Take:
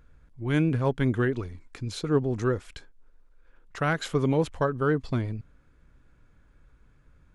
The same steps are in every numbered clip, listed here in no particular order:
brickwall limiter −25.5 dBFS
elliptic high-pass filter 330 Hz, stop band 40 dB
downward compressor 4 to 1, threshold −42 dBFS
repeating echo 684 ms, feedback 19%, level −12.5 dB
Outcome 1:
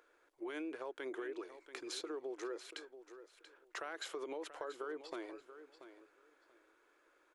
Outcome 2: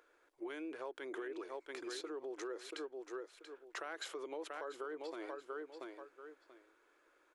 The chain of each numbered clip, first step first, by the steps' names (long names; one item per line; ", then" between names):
elliptic high-pass filter, then brickwall limiter, then downward compressor, then repeating echo
repeating echo, then brickwall limiter, then elliptic high-pass filter, then downward compressor